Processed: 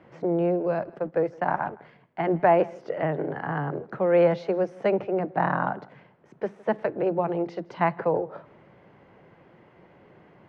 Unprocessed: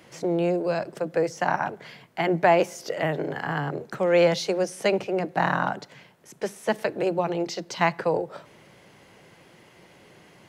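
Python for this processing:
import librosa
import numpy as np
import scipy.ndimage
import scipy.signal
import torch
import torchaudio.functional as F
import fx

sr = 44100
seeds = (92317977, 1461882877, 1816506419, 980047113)

y = fx.law_mismatch(x, sr, coded='A', at=(0.82, 2.41))
y = scipy.signal.sosfilt(scipy.signal.butter(2, 1500.0, 'lowpass', fs=sr, output='sos'), y)
y = y + 10.0 ** (-23.5 / 20.0) * np.pad(y, (int(161 * sr / 1000.0), 0))[:len(y)]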